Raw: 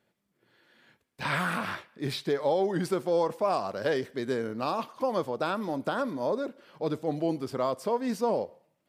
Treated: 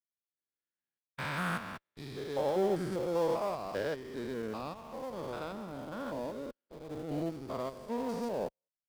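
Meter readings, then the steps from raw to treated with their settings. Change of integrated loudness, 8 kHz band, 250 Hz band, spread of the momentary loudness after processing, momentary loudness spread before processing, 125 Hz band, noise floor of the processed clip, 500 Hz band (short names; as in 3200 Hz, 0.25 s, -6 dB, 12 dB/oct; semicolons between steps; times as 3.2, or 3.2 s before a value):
-6.5 dB, -5.5 dB, -6.0 dB, 12 LU, 6 LU, -5.0 dB, under -85 dBFS, -6.0 dB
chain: stepped spectrum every 0.2 s; in parallel at -9.5 dB: Schmitt trigger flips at -36 dBFS; on the sum: upward expander 2.5:1, over -52 dBFS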